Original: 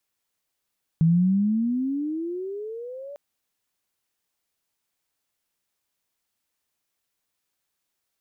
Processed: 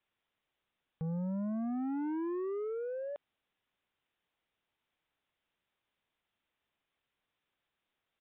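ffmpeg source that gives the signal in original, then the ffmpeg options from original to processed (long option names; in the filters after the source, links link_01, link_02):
-f lavfi -i "aevalsrc='pow(10,(-14.5-21*t/2.15)/20)*sin(2*PI*159*2.15/(22.5*log(2)/12)*(exp(22.5*log(2)/12*t/2.15)-1))':duration=2.15:sample_rate=44100"
-af "alimiter=level_in=1dB:limit=-24dB:level=0:latency=1,volume=-1dB,aresample=8000,asoftclip=type=tanh:threshold=-33.5dB,aresample=44100"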